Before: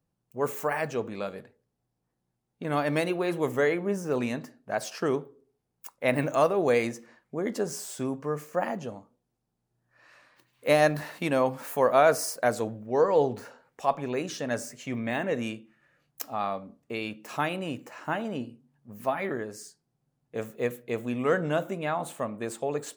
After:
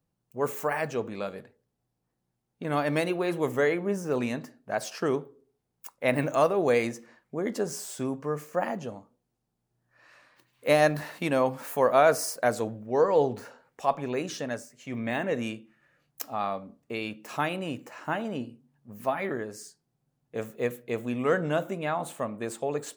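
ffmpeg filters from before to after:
ffmpeg -i in.wav -filter_complex "[0:a]asplit=3[link_01][link_02][link_03];[link_01]atrim=end=14.69,asetpts=PTS-STARTPTS,afade=type=out:start_time=14.4:duration=0.29:silence=0.251189[link_04];[link_02]atrim=start=14.69:end=14.73,asetpts=PTS-STARTPTS,volume=-12dB[link_05];[link_03]atrim=start=14.73,asetpts=PTS-STARTPTS,afade=type=in:duration=0.29:silence=0.251189[link_06];[link_04][link_05][link_06]concat=n=3:v=0:a=1" out.wav

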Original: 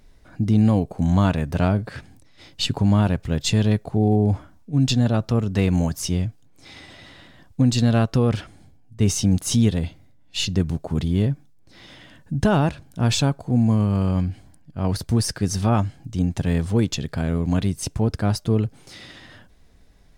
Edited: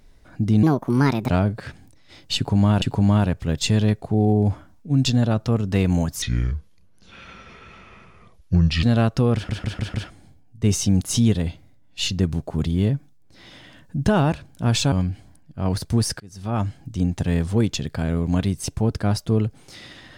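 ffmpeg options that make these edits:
ffmpeg -i in.wav -filter_complex "[0:a]asplit=12[link_01][link_02][link_03][link_04][link_05][link_06][link_07][link_08][link_09][link_10][link_11][link_12];[link_01]atrim=end=0.634[link_13];[link_02]atrim=start=0.63:end=1.58,asetpts=PTS-STARTPTS,asetrate=63504,aresample=44100[link_14];[link_03]atrim=start=1.576:end=3.112[link_15];[link_04]atrim=start=2.648:end=6.054[link_16];[link_05]atrim=start=6.05:end=7.8,asetpts=PTS-STARTPTS,asetrate=29547,aresample=44100[link_17];[link_06]atrim=start=7.796:end=8.462[link_18];[link_07]atrim=start=8.308:end=8.462[link_19];[link_08]atrim=start=8.308:end=8.462[link_20];[link_09]atrim=start=8.308:end=8.462[link_21];[link_10]atrim=start=8.308:end=13.292[link_22];[link_11]atrim=start=14.108:end=15.39,asetpts=PTS-STARTPTS,afade=type=out:start_time=1.278:duration=0.004:curve=hsin:silence=0.0707946[link_23];[link_12]atrim=start=15.39,asetpts=PTS-STARTPTS,afade=type=in:duration=0.47:curve=qua:silence=0.0707946[link_24];[link_13][link_14]acrossfade=duration=0.004:curve1=hsin:curve2=hsin[link_25];[link_25][link_15]acrossfade=duration=0.004:curve1=hsin:curve2=hsin[link_26];[link_26][link_16]acrossfade=duration=0.004:curve1=hsin:curve2=hsin[link_27];[link_27][link_17]acrossfade=duration=0.004:curve1=hsin:curve2=hsin[link_28];[link_28][link_18]acrossfade=duration=0.004:curve1=hsin:curve2=hsin[link_29];[link_29][link_19]acrossfade=duration=0.004:curve1=hsin:curve2=hsin[link_30];[link_30][link_20]acrossfade=duration=0.004:curve1=hsin:curve2=hsin[link_31];[link_31][link_21]acrossfade=duration=0.004:curve1=hsin:curve2=hsin[link_32];[link_32][link_22]acrossfade=duration=0.004:curve1=hsin:curve2=hsin[link_33];[link_23][link_24]concat=n=2:v=0:a=1[link_34];[link_33][link_34]acrossfade=duration=0.004:curve1=hsin:curve2=hsin" out.wav

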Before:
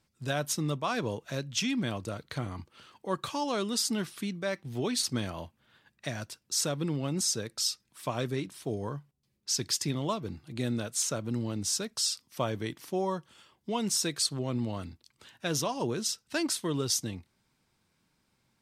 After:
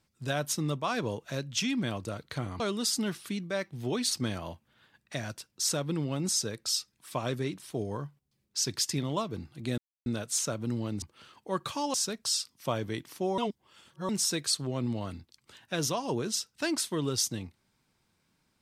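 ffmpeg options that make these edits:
ffmpeg -i in.wav -filter_complex "[0:a]asplit=7[link_01][link_02][link_03][link_04][link_05][link_06][link_07];[link_01]atrim=end=2.602[link_08];[link_02]atrim=start=3.518:end=10.7,asetpts=PTS-STARTPTS,afade=type=out:start_time=7.178:duration=0.004:curve=hsin,apad=pad_dur=0.28[link_09];[link_03]atrim=start=10.7:end=11.662,asetpts=PTS-STARTPTS,afade=type=in:duration=0.004:curve=hsin[link_10];[link_04]atrim=start=2.598:end=3.522[link_11];[link_05]atrim=start=11.658:end=13.102[link_12];[link_06]atrim=start=13.098:end=13.812,asetpts=PTS-STARTPTS,areverse[link_13];[link_07]atrim=start=13.808[link_14];[link_09][link_10]concat=n=2:v=0:a=1[link_15];[link_08][link_15]acrossfade=duration=0.004:curve1=hsin:curve2=hsin[link_16];[link_16][link_11]acrossfade=duration=0.004:curve1=hsin:curve2=hsin[link_17];[link_17][link_12]acrossfade=duration=0.004:curve1=hsin:curve2=hsin[link_18];[link_18][link_13]acrossfade=duration=0.004:curve1=hsin:curve2=hsin[link_19];[link_19][link_14]acrossfade=duration=0.004:curve1=hsin:curve2=hsin" out.wav

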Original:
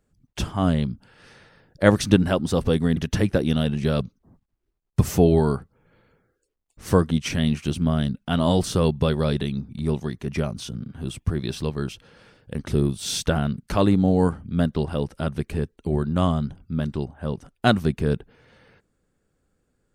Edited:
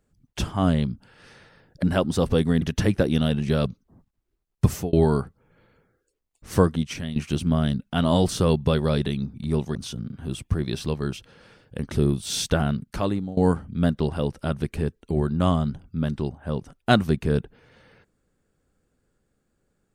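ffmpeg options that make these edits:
ffmpeg -i in.wav -filter_complex "[0:a]asplit=6[link_01][link_02][link_03][link_04][link_05][link_06];[link_01]atrim=end=1.832[link_07];[link_02]atrim=start=2.178:end=5.28,asetpts=PTS-STARTPTS,afade=type=out:start_time=2.842:duration=0.26[link_08];[link_03]atrim=start=5.28:end=7.51,asetpts=PTS-STARTPTS,afade=type=in:duration=0.004:curve=hsin,afade=type=out:start_time=1.66:duration=0.57:silence=0.223872[link_09];[link_04]atrim=start=7.51:end=10.102,asetpts=PTS-STARTPTS,afade=type=in:duration=0.004:curve=hsin:silence=0.223872[link_10];[link_05]atrim=start=10.508:end=14.13,asetpts=PTS-STARTPTS,afade=type=out:start_time=2.972:duration=0.65:silence=0.1[link_11];[link_06]atrim=start=14.13,asetpts=PTS-STARTPTS,afade=type=in:duration=0.004:curve=hsin:silence=0.1[link_12];[link_08][link_09][link_10]concat=n=3:v=0:a=1[link_13];[link_07][link_13]acrossfade=duration=0.004:curve1=hsin:curve2=hsin[link_14];[link_11][link_12]concat=n=2:v=0:a=1[link_15];[link_14][link_15]acrossfade=duration=0.004:curve1=hsin:curve2=hsin" out.wav

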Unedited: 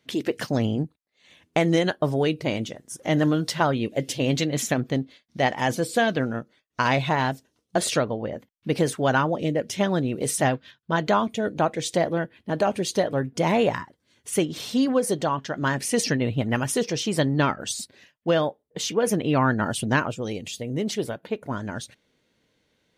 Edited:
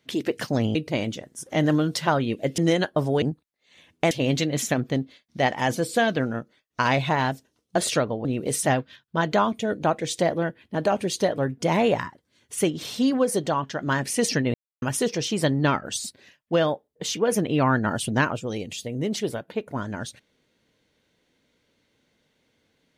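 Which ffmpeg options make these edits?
ffmpeg -i in.wav -filter_complex "[0:a]asplit=8[link_01][link_02][link_03][link_04][link_05][link_06][link_07][link_08];[link_01]atrim=end=0.752[link_09];[link_02]atrim=start=2.278:end=4.112[link_10];[link_03]atrim=start=1.638:end=2.282[link_11];[link_04]atrim=start=0.748:end=1.642[link_12];[link_05]atrim=start=4.108:end=8.252[link_13];[link_06]atrim=start=9.998:end=16.29,asetpts=PTS-STARTPTS,afade=type=out:start_time=6.288:duration=0.004:curve=hsin[link_14];[link_07]atrim=start=16.29:end=16.57,asetpts=PTS-STARTPTS,volume=0[link_15];[link_08]atrim=start=16.57,asetpts=PTS-STARTPTS,afade=type=in:duration=0.004:curve=hsin[link_16];[link_09][link_10]acrossfade=duration=0.004:curve1=hsin:curve2=hsin[link_17];[link_17][link_11]acrossfade=duration=0.004:curve1=hsin:curve2=hsin[link_18];[link_18][link_12]acrossfade=duration=0.004:curve1=hsin:curve2=hsin[link_19];[link_19][link_13]acrossfade=duration=0.004:curve1=hsin:curve2=hsin[link_20];[link_14][link_15][link_16]concat=n=3:v=0:a=1[link_21];[link_20][link_21]acrossfade=duration=0.004:curve1=hsin:curve2=hsin" out.wav

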